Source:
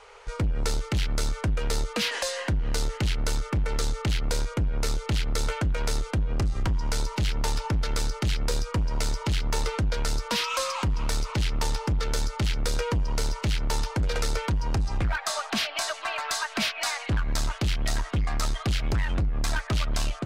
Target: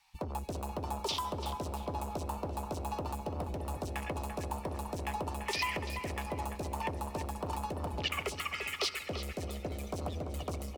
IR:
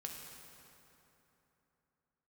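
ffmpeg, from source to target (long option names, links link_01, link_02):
-filter_complex "[0:a]bandreject=frequency=60:width_type=h:width=6,bandreject=frequency=120:width_type=h:width=6,bandreject=frequency=180:width_type=h:width=6,bandreject=frequency=240:width_type=h:width=6,bandreject=frequency=300:width_type=h:width=6,bandreject=frequency=360:width_type=h:width=6,bandreject=frequency=420:width_type=h:width=6,bandreject=frequency=480:width_type=h:width=6,afwtdn=0.0398,equalizer=frequency=850:width_type=o:width=0.39:gain=-13.5,acrossover=split=220|3500[link_01][link_02][link_03];[link_01]asoftclip=type=tanh:threshold=-32dB[link_04];[link_04][link_02][link_03]amix=inputs=3:normalize=0,lowshelf=frequency=190:gain=-8,asetrate=82908,aresample=44100,asplit=2[link_05][link_06];[link_06]adelay=340,lowpass=frequency=3100:poles=1,volume=-7dB,asplit=2[link_07][link_08];[link_08]adelay=340,lowpass=frequency=3100:poles=1,volume=0.44,asplit=2[link_09][link_10];[link_10]adelay=340,lowpass=frequency=3100:poles=1,volume=0.44,asplit=2[link_11][link_12];[link_12]adelay=340,lowpass=frequency=3100:poles=1,volume=0.44,asplit=2[link_13][link_14];[link_14]adelay=340,lowpass=frequency=3100:poles=1,volume=0.44[link_15];[link_05][link_07][link_09][link_11][link_13][link_15]amix=inputs=6:normalize=0,asplit=2[link_16][link_17];[1:a]atrim=start_sample=2205,adelay=13[link_18];[link_17][link_18]afir=irnorm=-1:irlink=0,volume=-13.5dB[link_19];[link_16][link_19]amix=inputs=2:normalize=0"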